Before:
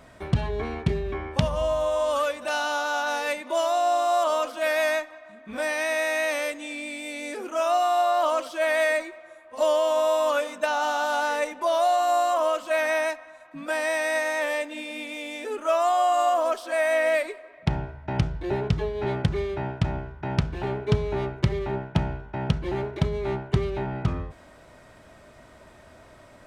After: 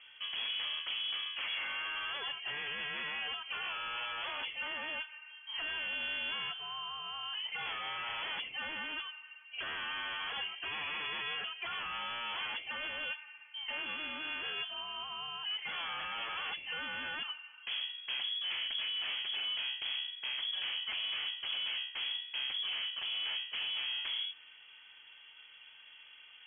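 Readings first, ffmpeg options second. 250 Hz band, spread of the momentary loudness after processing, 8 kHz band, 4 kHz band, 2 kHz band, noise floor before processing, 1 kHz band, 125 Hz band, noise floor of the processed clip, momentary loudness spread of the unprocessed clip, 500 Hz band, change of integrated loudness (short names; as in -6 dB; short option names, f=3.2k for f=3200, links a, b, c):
-25.5 dB, 8 LU, under -40 dB, +4.0 dB, -8.0 dB, -51 dBFS, -18.5 dB, -36.0 dB, -57 dBFS, 11 LU, -31.0 dB, -10.5 dB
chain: -af "aeval=exprs='0.0447*(abs(mod(val(0)/0.0447+3,4)-2)-1)':c=same,lowpass=f=2.9k:t=q:w=0.5098,lowpass=f=2.9k:t=q:w=0.6013,lowpass=f=2.9k:t=q:w=0.9,lowpass=f=2.9k:t=q:w=2.563,afreqshift=-3400,aemphasis=mode=production:type=50fm,volume=-7.5dB"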